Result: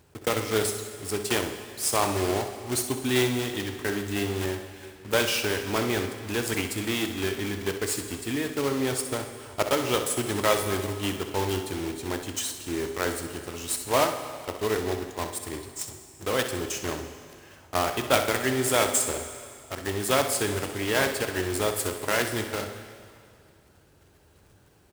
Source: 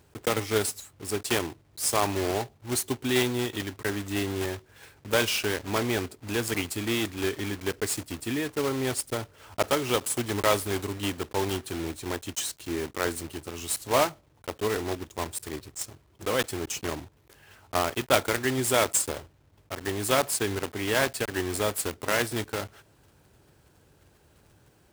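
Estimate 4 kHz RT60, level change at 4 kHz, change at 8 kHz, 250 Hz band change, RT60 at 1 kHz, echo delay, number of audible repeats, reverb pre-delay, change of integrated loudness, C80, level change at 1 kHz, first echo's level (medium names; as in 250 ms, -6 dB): 2.1 s, +1.0 dB, +1.0 dB, +1.0 dB, 2.3 s, 64 ms, 1, 6 ms, +1.0 dB, 9.5 dB, +1.0 dB, -10.0 dB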